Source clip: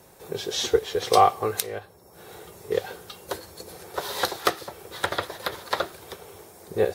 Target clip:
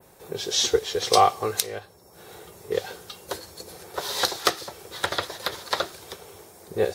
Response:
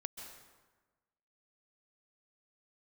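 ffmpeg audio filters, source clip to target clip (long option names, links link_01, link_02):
-af "adynamicequalizer=threshold=0.00631:dfrequency=5600:dqfactor=0.73:tfrequency=5600:tqfactor=0.73:attack=5:release=100:ratio=0.375:range=4:mode=boostabove:tftype=bell,volume=-1dB"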